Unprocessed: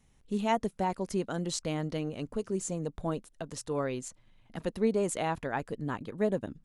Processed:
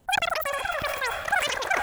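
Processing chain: wide varispeed 3.64×; echo that smears into a reverb 478 ms, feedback 48%, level -11 dB; decay stretcher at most 50 dB/s; trim +4.5 dB

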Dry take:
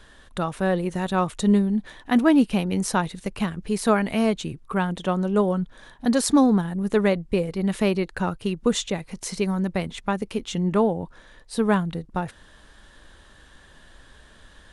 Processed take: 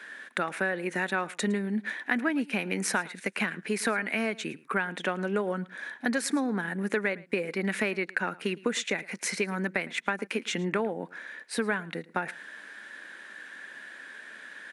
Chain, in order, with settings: high-pass 220 Hz 24 dB/octave; high-order bell 1.9 kHz +12 dB 1 oct; compression 6:1, threshold -25 dBFS, peak gain reduction 14.5 dB; delay 110 ms -21.5 dB

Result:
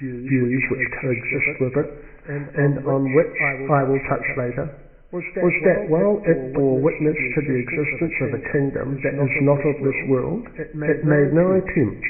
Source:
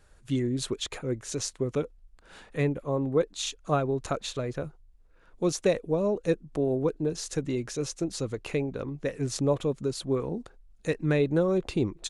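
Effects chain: knee-point frequency compression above 1.6 kHz 4:1; reverse echo 291 ms -10 dB; two-slope reverb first 0.93 s, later 2.4 s, from -23 dB, DRR 12 dB; trim +8 dB

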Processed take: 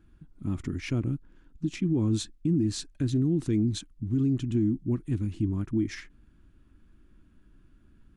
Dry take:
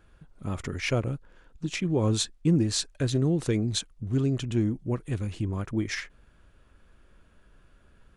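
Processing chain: resonant low shelf 390 Hz +8 dB, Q 3; peak limiter -10.5 dBFS, peak gain reduction 7.5 dB; trim -8 dB

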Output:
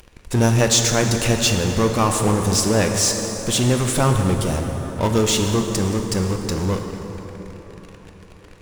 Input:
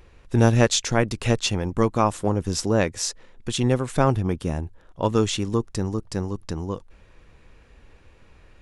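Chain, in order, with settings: treble shelf 5.3 kHz +10 dB; in parallel at -10 dB: fuzz box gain 41 dB, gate -44 dBFS; on the sum: plate-style reverb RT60 4.5 s, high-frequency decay 0.55×, DRR 3.5 dB; trim -2 dB

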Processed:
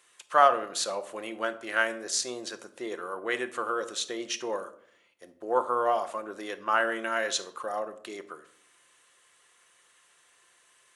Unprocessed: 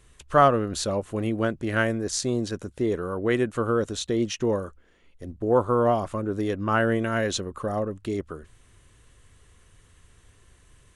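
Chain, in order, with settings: high-pass 720 Hz 12 dB/octave; reverberation RT60 0.60 s, pre-delay 6 ms, DRR 9 dB

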